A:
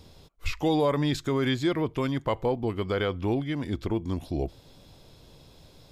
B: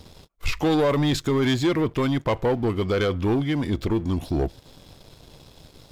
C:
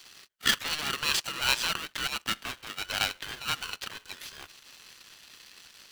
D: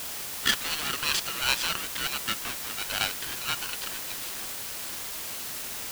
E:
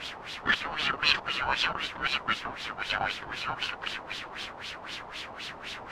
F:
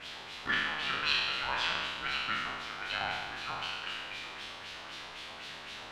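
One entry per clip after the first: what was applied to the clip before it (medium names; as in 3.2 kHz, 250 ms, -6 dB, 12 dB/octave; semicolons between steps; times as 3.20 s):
waveshaping leveller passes 2; endings held to a fixed fall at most 570 dB/s
resonant high-pass 2.3 kHz, resonance Q 2.4; polarity switched at an audio rate 760 Hz
word length cut 6-bit, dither triangular
LFO low-pass sine 3.9 Hz 840–3700 Hz
spectral sustain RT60 1.47 s; trim -9 dB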